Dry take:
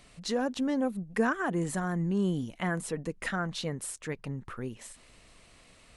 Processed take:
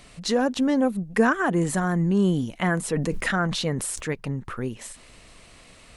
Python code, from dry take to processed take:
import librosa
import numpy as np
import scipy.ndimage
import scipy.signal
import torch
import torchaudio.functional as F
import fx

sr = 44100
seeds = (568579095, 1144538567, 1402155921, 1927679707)

y = fx.sustainer(x, sr, db_per_s=42.0, at=(2.89, 4.1))
y = y * 10.0 ** (7.5 / 20.0)